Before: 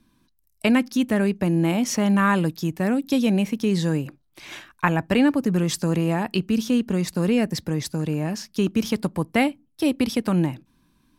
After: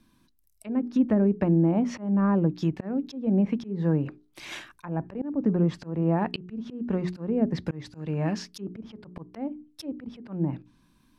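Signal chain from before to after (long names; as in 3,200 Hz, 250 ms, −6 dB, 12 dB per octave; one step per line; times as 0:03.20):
treble cut that deepens with the level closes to 620 Hz, closed at −16.5 dBFS
mains-hum notches 60/120/180/240/300/360/420 Hz
volume swells 262 ms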